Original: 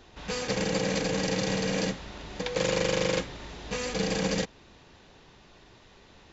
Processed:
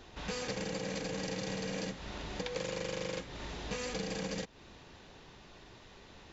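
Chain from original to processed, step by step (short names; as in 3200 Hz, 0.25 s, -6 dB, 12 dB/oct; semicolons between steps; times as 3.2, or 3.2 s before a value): compressor, threshold -35 dBFS, peak gain reduction 12 dB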